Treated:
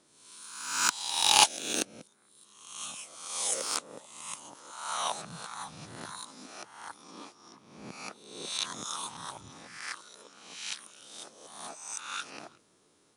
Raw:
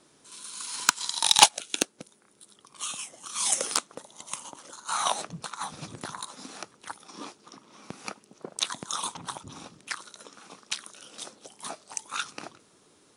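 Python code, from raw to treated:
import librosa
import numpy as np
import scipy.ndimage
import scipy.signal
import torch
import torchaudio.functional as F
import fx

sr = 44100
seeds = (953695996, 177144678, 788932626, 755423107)

y = fx.spec_swells(x, sr, rise_s=0.85)
y = F.gain(torch.from_numpy(y), -8.5).numpy()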